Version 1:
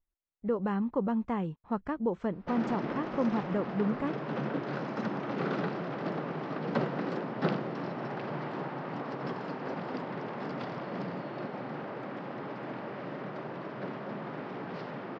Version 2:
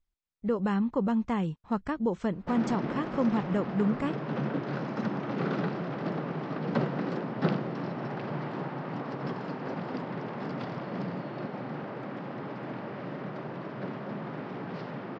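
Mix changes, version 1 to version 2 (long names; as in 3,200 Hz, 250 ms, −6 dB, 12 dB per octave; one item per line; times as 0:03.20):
speech: remove low-pass filter 1,400 Hz 6 dB per octave
master: add bass and treble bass +5 dB, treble +1 dB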